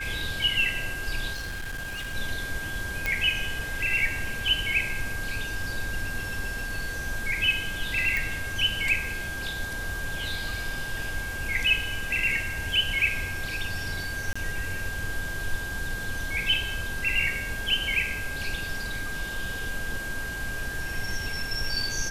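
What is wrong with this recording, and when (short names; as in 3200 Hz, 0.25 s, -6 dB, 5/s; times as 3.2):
tone 1600 Hz -33 dBFS
1.33–2.15 clipped -30.5 dBFS
3.06 pop -11 dBFS
8.17 pop
14.33–14.36 gap 25 ms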